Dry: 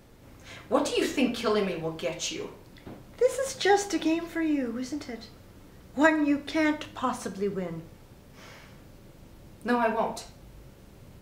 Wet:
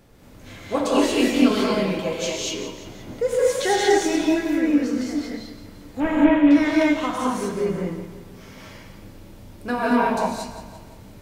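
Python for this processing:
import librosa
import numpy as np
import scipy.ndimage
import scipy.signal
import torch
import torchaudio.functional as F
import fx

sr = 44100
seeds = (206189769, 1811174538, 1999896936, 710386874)

y = fx.delta_mod(x, sr, bps=16000, step_db=-31.5, at=(6.0, 6.51))
y = fx.echo_feedback(y, sr, ms=171, feedback_pct=50, wet_db=-12.0)
y = fx.rev_gated(y, sr, seeds[0], gate_ms=260, shape='rising', drr_db=-4.5)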